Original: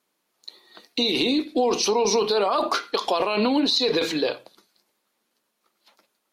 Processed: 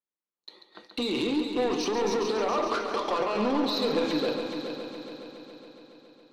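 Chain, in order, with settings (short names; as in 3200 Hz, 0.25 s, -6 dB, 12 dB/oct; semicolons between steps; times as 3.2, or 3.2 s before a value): gate -52 dBFS, range -27 dB; Bessel low-pass 7200 Hz; high shelf 3300 Hz -11.5 dB; notch 680 Hz, Q 14; in parallel at -2.5 dB: compressor, threshold -36 dBFS, peak gain reduction 16.5 dB; on the sum: soft clip -20.5 dBFS, distortion -13 dB; multi-head echo 0.139 s, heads first and third, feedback 65%, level -9 dB; on a send at -11.5 dB: reverb, pre-delay 6 ms; on the sum: gain -3 dB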